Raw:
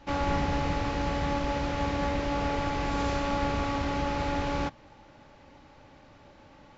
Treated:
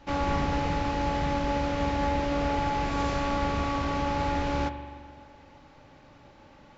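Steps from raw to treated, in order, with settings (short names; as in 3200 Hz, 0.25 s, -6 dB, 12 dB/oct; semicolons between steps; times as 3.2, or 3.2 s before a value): spring tank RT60 1.8 s, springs 42 ms, chirp 45 ms, DRR 9.5 dB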